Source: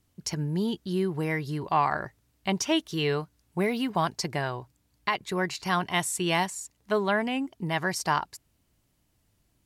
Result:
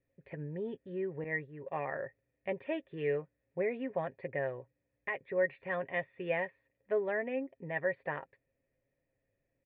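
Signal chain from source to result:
formant resonators in series e
comb filter 7.4 ms, depth 43%
0:01.24–0:01.90: downward expander −41 dBFS
level +5 dB

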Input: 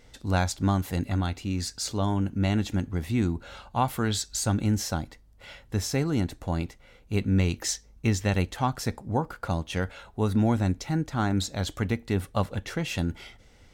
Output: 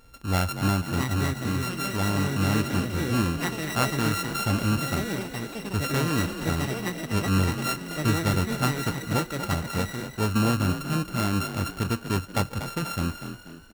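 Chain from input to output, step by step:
samples sorted by size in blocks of 32 samples
delay with pitch and tempo change per echo 763 ms, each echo +6 semitones, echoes 3, each echo −6 dB
echo with shifted repeats 241 ms, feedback 43%, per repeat +39 Hz, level −10 dB

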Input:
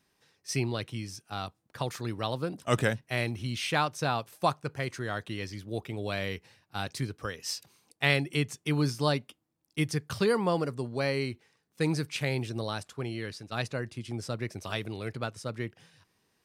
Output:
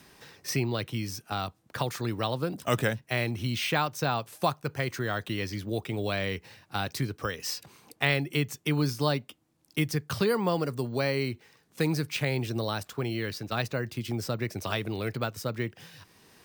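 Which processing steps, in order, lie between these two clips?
in parallel at −1 dB: downward compressor, threshold −39 dBFS, peak gain reduction 19 dB
on the sum: bad sample-rate conversion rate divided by 2×, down none, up hold
multiband upward and downward compressor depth 40%

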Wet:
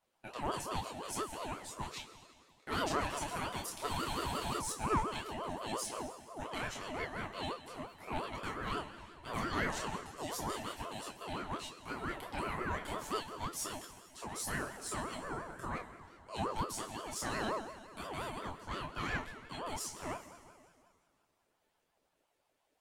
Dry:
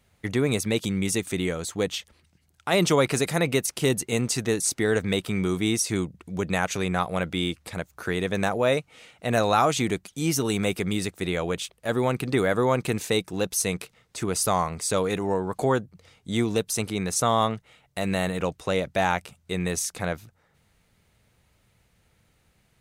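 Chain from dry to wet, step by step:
multi-voice chorus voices 4, 0.19 Hz, delay 27 ms, depth 1.9 ms
resonators tuned to a chord D3 minor, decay 0.22 s
tube saturation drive 29 dB, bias 0.5
on a send at −11 dB: convolution reverb RT60 2.2 s, pre-delay 82 ms
on the sum: frozen spectrum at 0:03.91, 0.68 s
ring modulator whose carrier an LFO sweeps 650 Hz, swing 35%, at 5.7 Hz
level +7 dB

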